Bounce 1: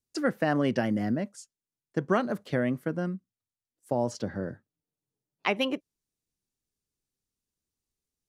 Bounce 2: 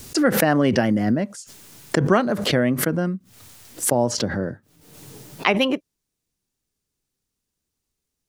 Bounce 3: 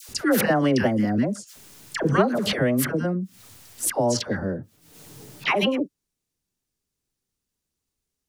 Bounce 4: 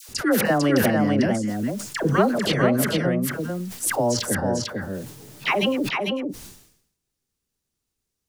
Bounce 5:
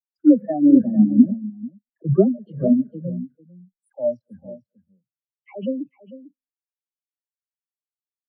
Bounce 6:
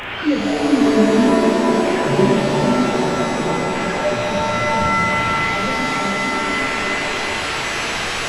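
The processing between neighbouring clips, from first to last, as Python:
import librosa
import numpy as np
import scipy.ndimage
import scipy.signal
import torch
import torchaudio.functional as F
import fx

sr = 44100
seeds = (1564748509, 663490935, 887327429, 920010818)

y1 = fx.pre_swell(x, sr, db_per_s=56.0)
y1 = F.gain(torch.from_numpy(y1), 7.5).numpy()
y2 = fx.dispersion(y1, sr, late='lows', ms=88.0, hz=970.0)
y2 = F.gain(torch.from_numpy(y2), -2.0).numpy()
y3 = y2 + 10.0 ** (-4.0 / 20.0) * np.pad(y2, (int(448 * sr / 1000.0), 0))[:len(y2)]
y3 = fx.sustainer(y3, sr, db_per_s=78.0)
y4 = y3 + 10.0 ** (-17.5 / 20.0) * np.pad(y3, (int(216 * sr / 1000.0), 0))[:len(y3)]
y4 = fx.spectral_expand(y4, sr, expansion=4.0)
y4 = F.gain(torch.from_numpy(y4), 4.5).numpy()
y5 = fx.delta_mod(y4, sr, bps=16000, step_db=-18.5)
y5 = fx.doubler(y5, sr, ms=35.0, db=-5)
y5 = fx.rev_shimmer(y5, sr, seeds[0], rt60_s=3.8, semitones=7, shimmer_db=-2, drr_db=-1.5)
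y5 = F.gain(torch.from_numpy(y5), -4.0).numpy()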